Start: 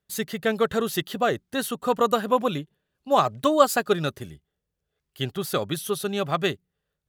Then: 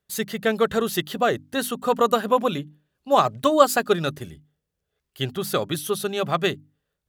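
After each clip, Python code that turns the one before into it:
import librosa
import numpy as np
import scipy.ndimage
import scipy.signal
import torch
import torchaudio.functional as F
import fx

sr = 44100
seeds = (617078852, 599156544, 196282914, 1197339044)

y = fx.hum_notches(x, sr, base_hz=50, count=6)
y = F.gain(torch.from_numpy(y), 2.0).numpy()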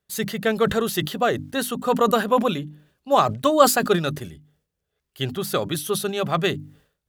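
y = fx.sustainer(x, sr, db_per_s=120.0)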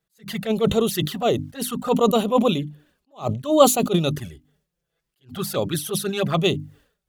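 y = fx.env_flanger(x, sr, rest_ms=6.1, full_db=-19.0)
y = fx.attack_slew(y, sr, db_per_s=230.0)
y = F.gain(torch.from_numpy(y), 4.0).numpy()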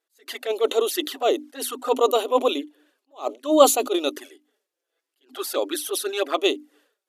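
y = fx.brickwall_bandpass(x, sr, low_hz=260.0, high_hz=14000.0)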